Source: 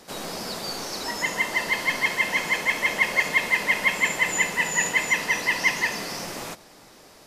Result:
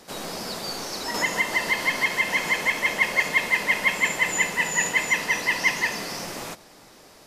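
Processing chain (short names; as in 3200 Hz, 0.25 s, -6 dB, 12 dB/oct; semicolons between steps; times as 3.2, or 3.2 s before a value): 1.14–2.8 three-band squash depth 70%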